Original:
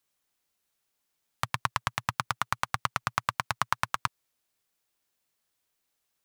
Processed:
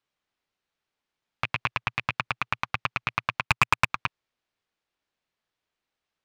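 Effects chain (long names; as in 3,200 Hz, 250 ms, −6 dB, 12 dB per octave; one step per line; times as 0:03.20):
loose part that buzzes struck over −40 dBFS, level −13 dBFS
low-pass filter 3,700 Hz 12 dB per octave
0:03.43–0:03.90: leveller curve on the samples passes 3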